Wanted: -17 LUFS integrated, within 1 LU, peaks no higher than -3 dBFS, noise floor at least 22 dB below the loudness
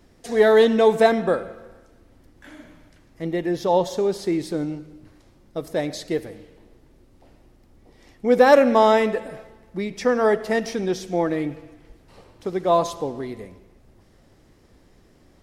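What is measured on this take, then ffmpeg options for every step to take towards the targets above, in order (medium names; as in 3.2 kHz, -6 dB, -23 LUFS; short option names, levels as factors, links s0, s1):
loudness -21.0 LUFS; peak level -3.0 dBFS; loudness target -17.0 LUFS
-> -af "volume=1.58,alimiter=limit=0.708:level=0:latency=1"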